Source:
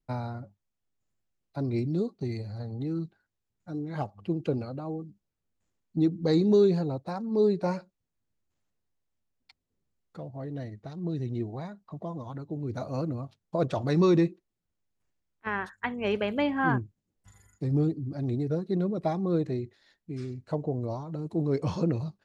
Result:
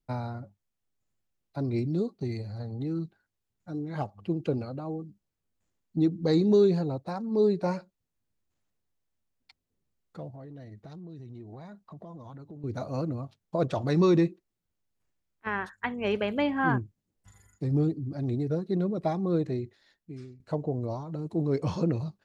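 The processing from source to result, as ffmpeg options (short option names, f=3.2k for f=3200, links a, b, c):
-filter_complex "[0:a]asettb=1/sr,asplit=3[a][b][c];[a]atrim=end=10.334[d];[b]atrim=start=10.33:end=12.64,asetpts=PTS-STARTPTS,afade=t=in:d=0.004:c=qsin,afade=t=out:st=2.306:d=0.004:c=qsin,acompressor=threshold=-41dB:ratio=6:attack=3.2:release=140:knee=1:detection=peak[e];[c]atrim=start=12.636[f];[d][e]acrossfade=d=0.004:c1=hsin:c2=qsin[g];[g][f]acrossfade=d=0.004:c1=qsin:c2=hsin,asplit=2[h][i];[h]atrim=end=20.4,asetpts=PTS-STARTPTS,afade=t=out:st=19.58:d=0.82:c=qsin:silence=0.141254[j];[i]atrim=start=20.4,asetpts=PTS-STARTPTS,afade=t=in:d=0.004:c=hsin:silence=0.141254[k];[j][k]concat=n=2:v=0:a=1"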